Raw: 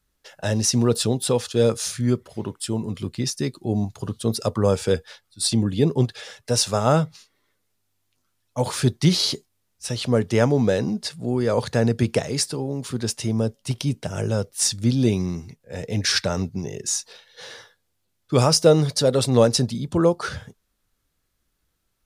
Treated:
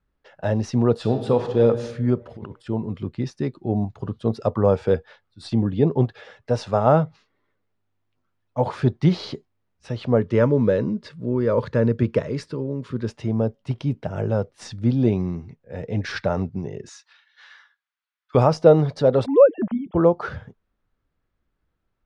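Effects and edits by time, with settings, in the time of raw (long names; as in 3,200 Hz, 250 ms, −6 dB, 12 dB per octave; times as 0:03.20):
0:00.96–0:01.65: thrown reverb, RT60 1.2 s, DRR 6 dB
0:02.15–0:02.68: compressor whose output falls as the input rises −35 dBFS
0:10.19–0:13.09: Butterworth band-reject 750 Hz, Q 2.5
0:16.89–0:18.35: high-pass filter 1,200 Hz 24 dB per octave
0:19.26–0:19.95: three sine waves on the formant tracks
whole clip: Bessel low-pass filter 1,600 Hz, order 2; dynamic equaliser 740 Hz, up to +5 dB, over −34 dBFS, Q 1.4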